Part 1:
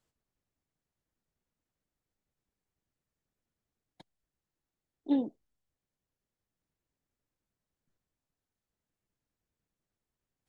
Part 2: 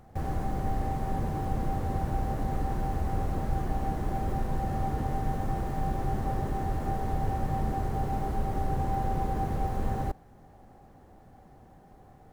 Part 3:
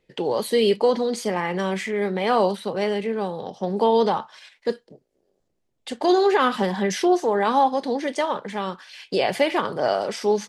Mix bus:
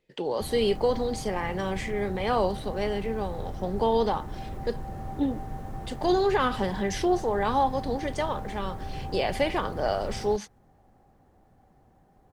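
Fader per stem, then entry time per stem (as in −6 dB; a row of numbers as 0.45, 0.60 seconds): +1.0, −6.5, −5.5 decibels; 0.10, 0.25, 0.00 seconds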